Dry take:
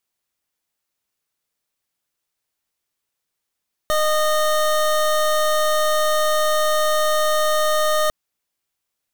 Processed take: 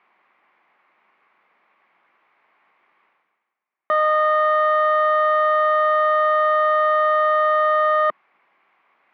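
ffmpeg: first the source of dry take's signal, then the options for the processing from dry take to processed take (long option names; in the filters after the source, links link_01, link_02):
-f lavfi -i "aevalsrc='0.126*(2*lt(mod(615*t,1),0.25)-1)':duration=4.2:sample_rate=44100"
-af "areverse,acompressor=mode=upward:threshold=-37dB:ratio=2.5,areverse,highpass=frequency=220:width=0.5412,highpass=frequency=220:width=1.3066,equalizer=frequency=270:width_type=q:width=4:gain=-7,equalizer=frequency=470:width_type=q:width=4:gain=-4,equalizer=frequency=810:width_type=q:width=4:gain=4,equalizer=frequency=1100:width_type=q:width=4:gain=8,equalizer=frequency=2200:width_type=q:width=4:gain=7,lowpass=frequency=2200:width=0.5412,lowpass=frequency=2200:width=1.3066"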